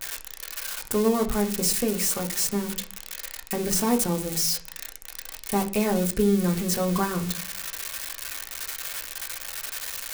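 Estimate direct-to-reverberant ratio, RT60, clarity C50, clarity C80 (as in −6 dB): 2.0 dB, 0.50 s, 14.5 dB, 19.5 dB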